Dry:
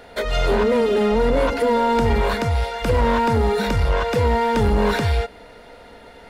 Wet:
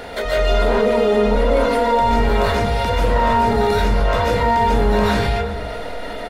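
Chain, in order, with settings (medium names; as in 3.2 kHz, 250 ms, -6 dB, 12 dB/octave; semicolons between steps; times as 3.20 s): echo from a far wall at 63 m, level -22 dB; algorithmic reverb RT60 0.54 s, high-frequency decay 0.45×, pre-delay 105 ms, DRR -8.5 dB; level flattener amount 50%; trim -8.5 dB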